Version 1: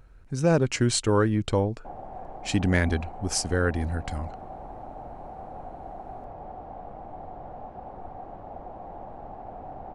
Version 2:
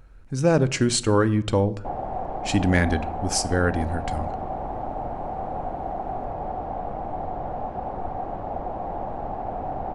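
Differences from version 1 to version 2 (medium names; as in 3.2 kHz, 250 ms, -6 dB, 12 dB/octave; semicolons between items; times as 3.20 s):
speech: send on; background +10.0 dB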